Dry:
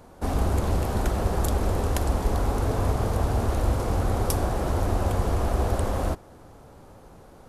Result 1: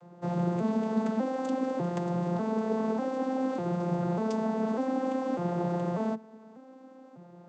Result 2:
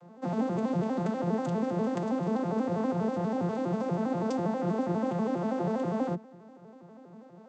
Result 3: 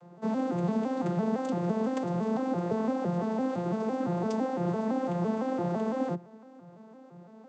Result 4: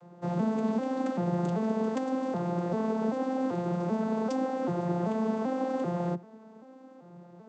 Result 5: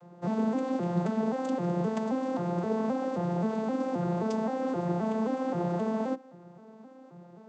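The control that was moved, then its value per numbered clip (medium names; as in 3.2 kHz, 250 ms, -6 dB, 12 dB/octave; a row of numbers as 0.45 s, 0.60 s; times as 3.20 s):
vocoder on a broken chord, a note every: 596 ms, 81 ms, 169 ms, 389 ms, 263 ms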